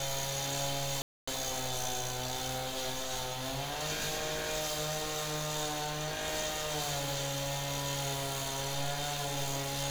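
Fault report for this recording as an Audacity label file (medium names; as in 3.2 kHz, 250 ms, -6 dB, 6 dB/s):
1.020000	1.270000	dropout 255 ms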